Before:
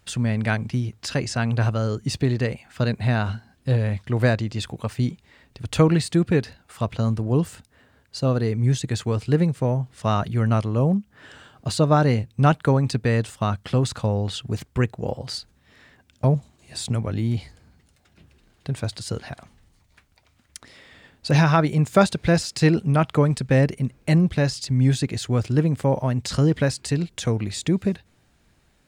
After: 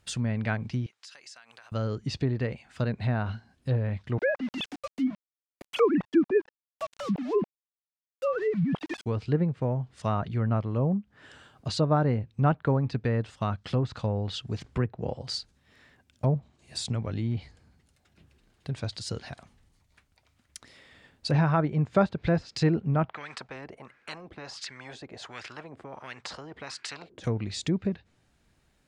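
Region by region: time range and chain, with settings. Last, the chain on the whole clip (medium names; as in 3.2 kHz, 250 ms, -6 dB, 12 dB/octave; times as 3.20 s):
0.86–1.72 s: high-pass 1.1 kHz + compression 16:1, threshold -41 dBFS
4.18–9.06 s: formants replaced by sine waves + small samples zeroed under -33.5 dBFS
14.64–15.09 s: treble shelf 5.7 kHz -10 dB + three bands compressed up and down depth 40%
23.09–27.24 s: wah-wah 1.4 Hz 320–1800 Hz, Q 3.4 + spectrum-flattening compressor 4:1
whole clip: low-pass that closes with the level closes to 1.5 kHz, closed at -16.5 dBFS; dynamic bell 5.1 kHz, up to +5 dB, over -49 dBFS, Q 0.85; trim -6 dB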